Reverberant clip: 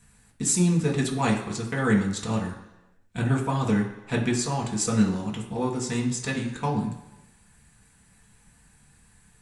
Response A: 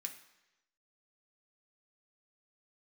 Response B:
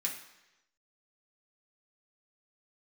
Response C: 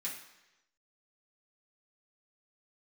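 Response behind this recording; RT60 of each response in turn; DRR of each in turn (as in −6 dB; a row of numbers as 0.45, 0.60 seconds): B; 1.0, 1.0, 1.0 seconds; 3.0, −2.5, −6.5 decibels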